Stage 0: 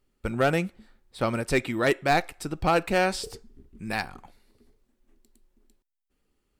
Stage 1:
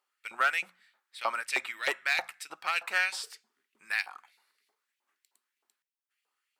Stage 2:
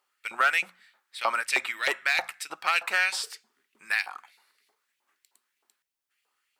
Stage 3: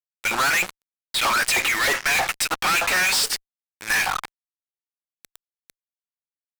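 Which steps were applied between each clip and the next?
LFO high-pass saw up 3.2 Hz 820–2700 Hz; hum notches 60/120/180/240 Hz; trim -3.5 dB
peak limiter -18.5 dBFS, peak gain reduction 5 dB; trim +6 dB
fuzz box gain 47 dB, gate -47 dBFS; trim -5.5 dB

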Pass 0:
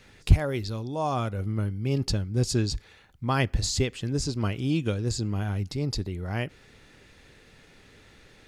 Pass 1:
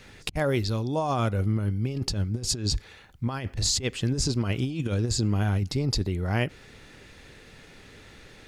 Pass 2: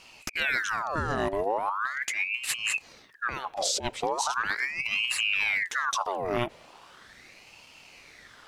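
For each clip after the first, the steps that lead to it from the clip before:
compressor with a negative ratio -28 dBFS, ratio -0.5; trim +2.5 dB
ring modulator with a swept carrier 1.6 kHz, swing 70%, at 0.39 Hz

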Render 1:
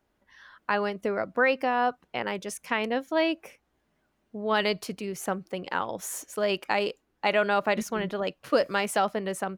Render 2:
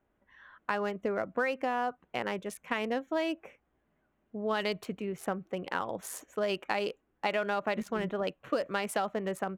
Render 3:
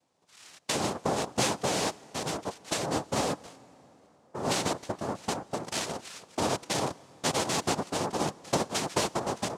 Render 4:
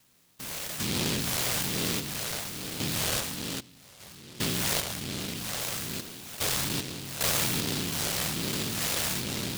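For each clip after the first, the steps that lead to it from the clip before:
local Wiener filter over 9 samples; band-stop 900 Hz, Q 26; compression, threshold -25 dBFS, peak gain reduction 8 dB; trim -1.5 dB
noise-vocoded speech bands 2; on a send at -22 dB: reverberation RT60 4.6 s, pre-delay 68 ms; on the sum: trim +2 dB
spectrogram pixelated in time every 400 ms; phase shifter stages 4, 1.2 Hz, lowest notch 270–1200 Hz; delay time shaken by noise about 3.5 kHz, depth 0.41 ms; trim +7.5 dB

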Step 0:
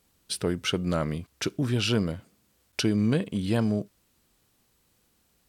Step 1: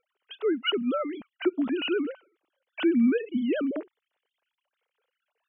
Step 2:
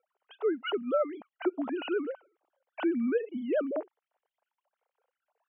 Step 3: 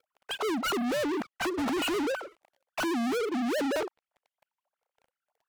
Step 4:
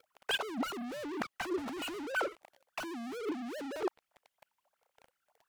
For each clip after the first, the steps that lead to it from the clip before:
formants replaced by sine waves
band-pass filter 750 Hz, Q 2; trim +6.5 dB
low-pass that closes with the level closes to 1.1 kHz, closed at -25 dBFS; hard clipper -34 dBFS, distortion -6 dB; waveshaping leveller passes 5; trim +6 dB
compressor with a negative ratio -35 dBFS, ratio -0.5

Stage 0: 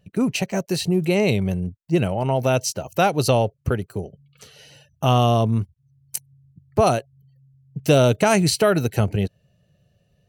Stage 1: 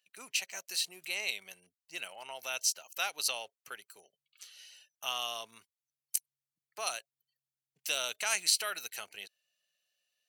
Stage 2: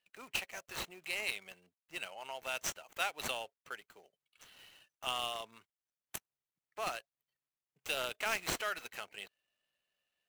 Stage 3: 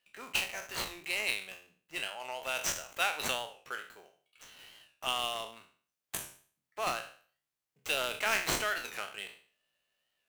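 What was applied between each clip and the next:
Bessel high-pass 2.7 kHz, order 2; trim -3 dB
median filter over 9 samples; trim +1 dB
spectral sustain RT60 0.45 s; hum notches 60/120/180 Hz; warped record 45 rpm, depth 100 cents; trim +3 dB

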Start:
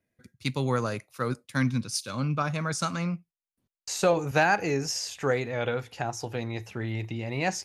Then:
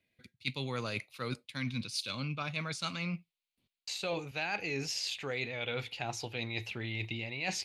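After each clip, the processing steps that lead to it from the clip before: high-order bell 3.1 kHz +13 dB 1.3 oct; reverse; compression 6:1, threshold -30 dBFS, peak gain reduction 15.5 dB; reverse; trim -3 dB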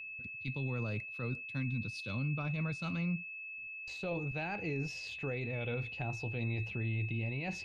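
tilt EQ -4 dB/octave; peak limiter -26 dBFS, peak gain reduction 9 dB; whistle 2.6 kHz -39 dBFS; trim -3.5 dB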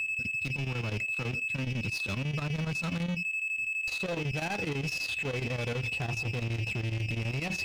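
waveshaping leveller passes 3; peak limiter -31.5 dBFS, peak gain reduction 3.5 dB; square tremolo 12 Hz, depth 65%, duty 75%; trim +3.5 dB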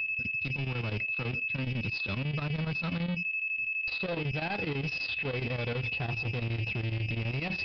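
resampled via 11.025 kHz

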